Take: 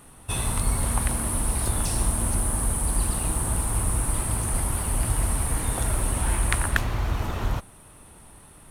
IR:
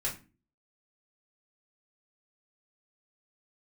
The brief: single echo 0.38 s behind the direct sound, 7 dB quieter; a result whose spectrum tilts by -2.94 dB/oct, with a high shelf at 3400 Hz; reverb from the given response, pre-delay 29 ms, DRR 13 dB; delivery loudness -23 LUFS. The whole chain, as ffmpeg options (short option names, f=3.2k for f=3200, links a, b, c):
-filter_complex "[0:a]highshelf=f=3.4k:g=7.5,aecho=1:1:380:0.447,asplit=2[a][b];[1:a]atrim=start_sample=2205,adelay=29[c];[b][c]afir=irnorm=-1:irlink=0,volume=-17dB[d];[a][d]amix=inputs=2:normalize=0,volume=-2.5dB"